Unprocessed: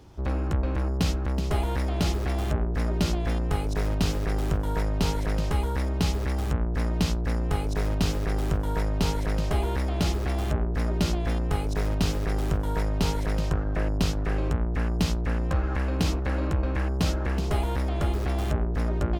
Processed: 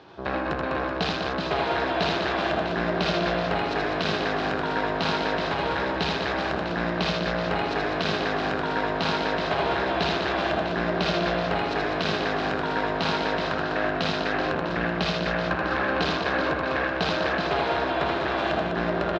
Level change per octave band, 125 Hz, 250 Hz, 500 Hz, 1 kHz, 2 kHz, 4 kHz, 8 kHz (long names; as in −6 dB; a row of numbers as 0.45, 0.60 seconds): −8.0, +1.0, +7.0, +9.5, +11.5, +7.5, −7.5 decibels